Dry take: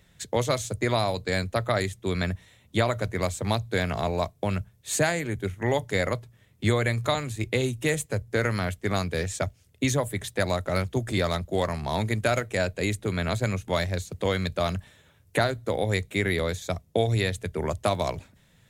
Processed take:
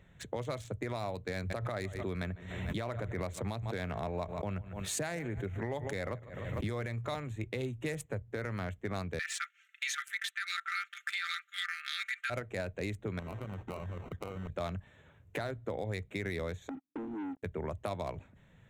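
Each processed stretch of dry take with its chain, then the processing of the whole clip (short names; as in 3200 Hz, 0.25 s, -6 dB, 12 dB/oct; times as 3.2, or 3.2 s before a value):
1.35–6.89 feedback echo 0.15 s, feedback 41%, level -22.5 dB + backwards sustainer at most 61 dB/s
9.19–12.3 brick-wall FIR high-pass 1200 Hz + bell 1800 Hz +14.5 dB 2.9 oct + comb 5.1 ms, depth 86%
13.19–14.5 sample-rate reducer 1700 Hz + compressor 10:1, threshold -31 dBFS + Doppler distortion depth 0.15 ms
16.69–17.43 Butterworth band-pass 280 Hz, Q 5.7 + sample leveller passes 5
whole clip: Wiener smoothing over 9 samples; limiter -16 dBFS; compressor 2:1, threshold -41 dBFS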